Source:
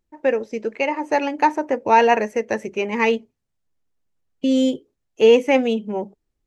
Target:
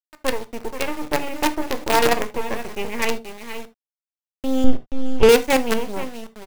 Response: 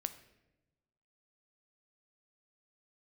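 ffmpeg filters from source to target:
-filter_complex "[0:a]asettb=1/sr,asplit=3[s0][s1][s2];[s0]atrim=end=0.634[s3];[s1]atrim=start=0.63:end=2.51,asetpts=PTS-STARTPTS,afade=t=in:d=0.004:c=qsin,afade=t=out:st=1.876:d=0.004:c=qsin,highpass=120,equalizer=f=340:t=q:w=4:g=8,equalizer=f=960:t=q:w=4:g=-4,equalizer=f=1400:t=q:w=4:g=-8,lowpass=f=3600:w=0.5412,lowpass=f=3600:w=1.3066[s4];[s2]atrim=start=2.506[s5];[s3][s4]acrossfade=d=0.004:c1=hsin:c2=qsin[s6];[s6][s5]acrossfade=d=0.004:c1=qsin:c2=hsin,aecho=1:1:479:0.316,acrusher=bits=3:dc=4:mix=0:aa=0.000001,asettb=1/sr,asplit=3[s7][s8][s9];[s7]atrim=end=4.644[s10];[s8]atrim=start=4.64:end=5.29,asetpts=PTS-STARTPTS,afade=t=in:d=0.004:c=qsin,afade=t=out:st=0.646:d=0.004:c=qsin,aemphasis=mode=reproduction:type=bsi[s11];[s9]atrim=start=5.286[s12];[s10][s11]acrossfade=d=0.004:c1=hsin:c2=qsin[s13];[s13][s12]acrossfade=d=0.004:c1=qsin:c2=hsin[s14];[1:a]atrim=start_sample=2205,atrim=end_sample=3969[s15];[s14][s15]afir=irnorm=-1:irlink=0,volume=0.891"

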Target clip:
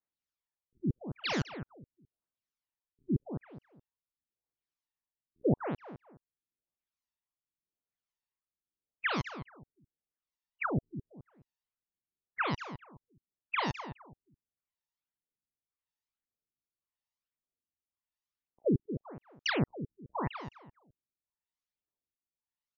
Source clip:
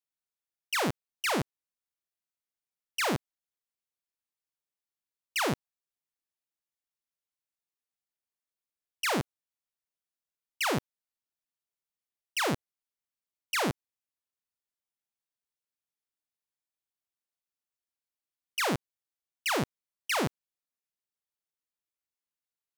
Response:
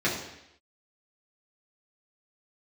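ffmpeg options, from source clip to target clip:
-filter_complex "[0:a]aphaser=in_gain=1:out_gain=1:delay=1.1:decay=0.61:speed=0.91:type=sinusoidal,asplit=2[s0][s1];[s1]adelay=211,lowpass=f=1600:p=1,volume=0.335,asplit=2[s2][s3];[s3]adelay=211,lowpass=f=1600:p=1,volume=0.28,asplit=2[s4][s5];[s5]adelay=211,lowpass=f=1600:p=1,volume=0.28[s6];[s0][s2][s4][s6]amix=inputs=4:normalize=0,afftfilt=real='re*lt(b*sr/1024,380*pow(7300/380,0.5+0.5*sin(2*PI*0.89*pts/sr)))':imag='im*lt(b*sr/1024,380*pow(7300/380,0.5+0.5*sin(2*PI*0.89*pts/sr)))':win_size=1024:overlap=0.75,volume=0.631"

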